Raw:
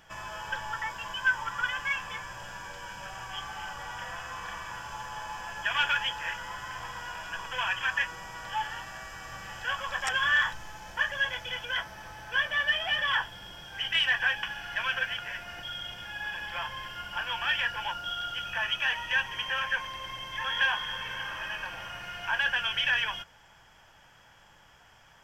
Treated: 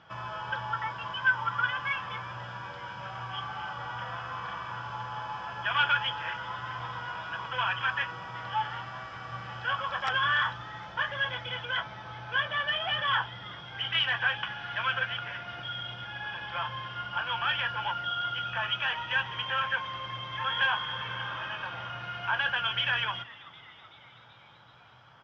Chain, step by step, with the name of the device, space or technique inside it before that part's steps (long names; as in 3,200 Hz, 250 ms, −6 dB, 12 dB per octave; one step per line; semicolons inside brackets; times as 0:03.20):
frequency-shifting delay pedal into a guitar cabinet (echo with shifted repeats 380 ms, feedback 61%, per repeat +140 Hz, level −21 dB; loudspeaker in its box 98–4,100 Hz, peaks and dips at 120 Hz +10 dB, 1,300 Hz +6 dB, 1,800 Hz −7 dB, 2,600 Hz −4 dB)
level +1.5 dB